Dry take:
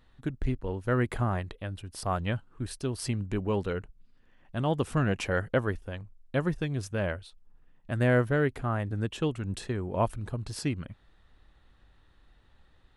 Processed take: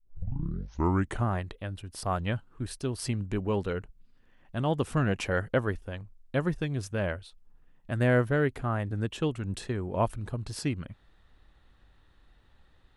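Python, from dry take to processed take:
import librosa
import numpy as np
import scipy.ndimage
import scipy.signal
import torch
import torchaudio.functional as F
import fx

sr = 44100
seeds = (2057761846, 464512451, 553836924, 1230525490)

y = fx.tape_start_head(x, sr, length_s=1.25)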